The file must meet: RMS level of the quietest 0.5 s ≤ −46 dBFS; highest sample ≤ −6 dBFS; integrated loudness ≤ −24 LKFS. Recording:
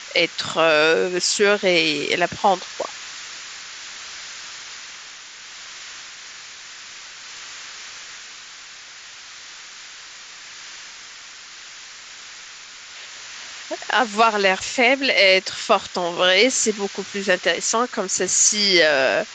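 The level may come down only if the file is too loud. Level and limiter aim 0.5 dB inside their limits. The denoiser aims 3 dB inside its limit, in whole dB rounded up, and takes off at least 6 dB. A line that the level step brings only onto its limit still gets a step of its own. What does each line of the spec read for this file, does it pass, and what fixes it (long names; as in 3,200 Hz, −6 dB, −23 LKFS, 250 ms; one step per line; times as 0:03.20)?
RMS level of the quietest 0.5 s −40 dBFS: out of spec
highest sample −3.5 dBFS: out of spec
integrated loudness −18.0 LKFS: out of spec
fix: level −6.5 dB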